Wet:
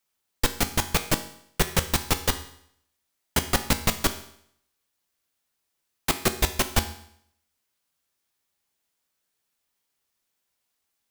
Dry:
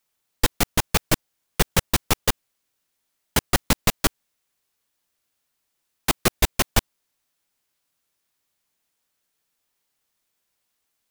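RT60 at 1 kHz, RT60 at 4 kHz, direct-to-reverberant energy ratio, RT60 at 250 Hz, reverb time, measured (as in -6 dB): 0.65 s, 0.65 s, 8.0 dB, 0.65 s, 0.65 s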